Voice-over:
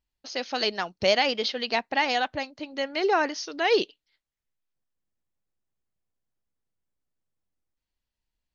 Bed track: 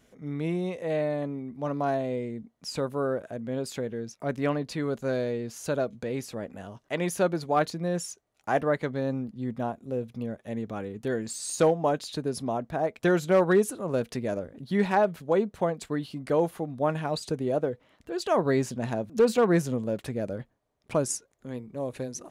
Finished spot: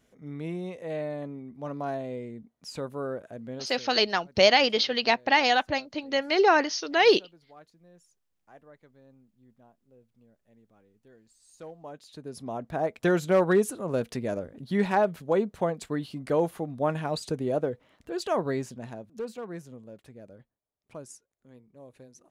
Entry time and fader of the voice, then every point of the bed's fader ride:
3.35 s, +3.0 dB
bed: 3.5 s -5 dB
4.12 s -27.5 dB
11.36 s -27.5 dB
12.77 s -0.5 dB
18.17 s -0.5 dB
19.42 s -16.5 dB

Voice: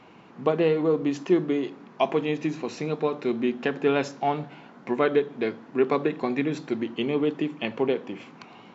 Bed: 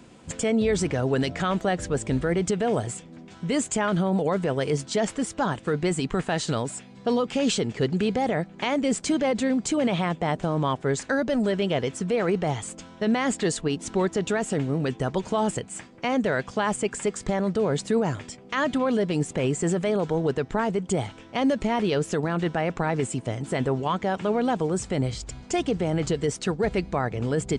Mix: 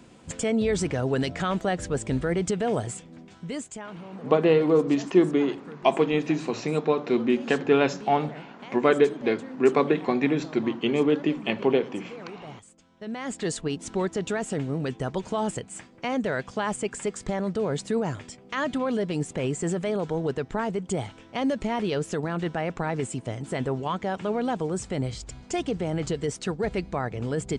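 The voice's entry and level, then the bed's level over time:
3.85 s, +2.5 dB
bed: 3.21 s -1.5 dB
3.98 s -17.5 dB
12.82 s -17.5 dB
13.51 s -3 dB

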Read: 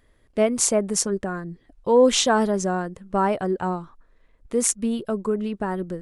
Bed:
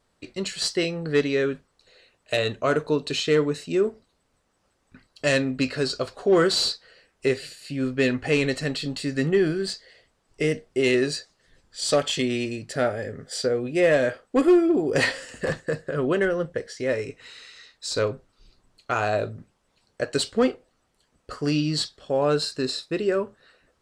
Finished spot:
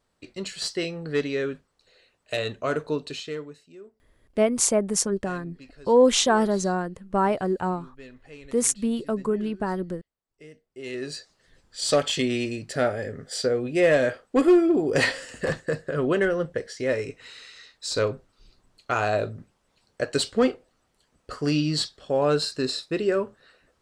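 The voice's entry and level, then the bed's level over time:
4.00 s, -1.0 dB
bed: 2.99 s -4 dB
3.76 s -23.5 dB
10.6 s -23.5 dB
11.33 s 0 dB

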